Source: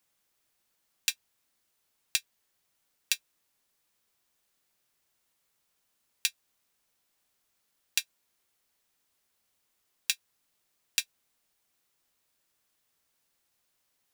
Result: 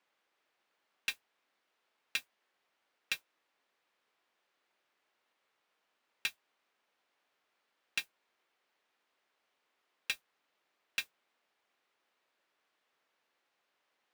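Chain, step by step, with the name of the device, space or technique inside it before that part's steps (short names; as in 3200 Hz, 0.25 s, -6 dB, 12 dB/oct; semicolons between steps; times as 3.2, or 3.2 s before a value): carbon microphone (BPF 350–2700 Hz; soft clip -28.5 dBFS, distortion -9 dB; modulation noise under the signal 14 dB); gain +4.5 dB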